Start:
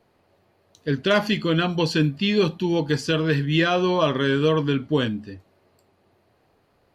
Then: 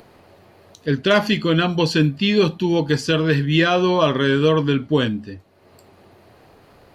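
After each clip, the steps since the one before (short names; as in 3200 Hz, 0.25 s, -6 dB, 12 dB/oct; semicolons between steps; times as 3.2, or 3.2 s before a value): upward compressor, threshold -42 dBFS; gain +3.5 dB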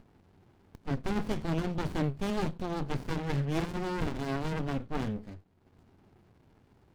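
running maximum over 65 samples; gain -9 dB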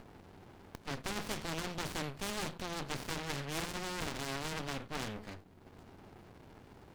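spectral compressor 2:1; gain -3 dB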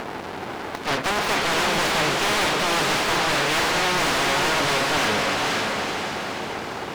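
diffused feedback echo 0.507 s, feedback 45%, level -7 dB; overdrive pedal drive 29 dB, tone 4000 Hz, clips at -19.5 dBFS; gain +7.5 dB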